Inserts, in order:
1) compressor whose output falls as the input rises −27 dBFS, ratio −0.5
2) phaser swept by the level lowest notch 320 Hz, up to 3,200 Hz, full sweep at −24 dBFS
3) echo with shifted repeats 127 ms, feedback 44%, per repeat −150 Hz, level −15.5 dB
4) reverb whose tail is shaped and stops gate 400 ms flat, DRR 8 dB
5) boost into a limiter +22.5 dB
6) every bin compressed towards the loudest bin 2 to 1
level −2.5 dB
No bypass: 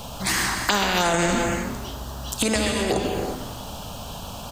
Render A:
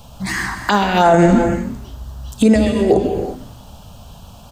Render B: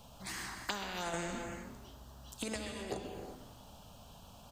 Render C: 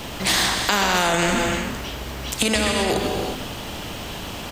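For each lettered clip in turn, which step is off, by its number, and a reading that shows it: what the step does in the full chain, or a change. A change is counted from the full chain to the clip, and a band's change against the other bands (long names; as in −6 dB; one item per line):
6, 8 kHz band −14.5 dB
5, change in crest factor +4.5 dB
2, 4 kHz band +3.0 dB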